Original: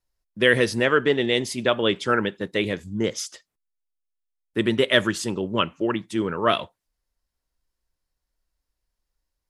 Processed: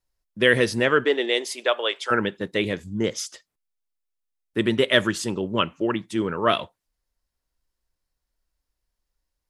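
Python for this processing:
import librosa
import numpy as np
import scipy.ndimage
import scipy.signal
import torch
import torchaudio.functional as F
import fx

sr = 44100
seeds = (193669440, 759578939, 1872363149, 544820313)

y = fx.highpass(x, sr, hz=fx.line((1.03, 280.0), (2.1, 600.0)), slope=24, at=(1.03, 2.1), fade=0.02)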